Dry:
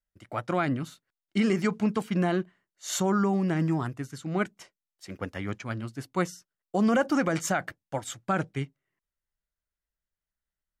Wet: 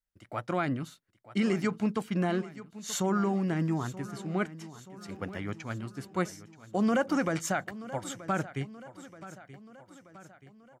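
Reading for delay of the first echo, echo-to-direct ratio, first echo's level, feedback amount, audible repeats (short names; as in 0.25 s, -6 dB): 0.929 s, -14.5 dB, -16.0 dB, 55%, 4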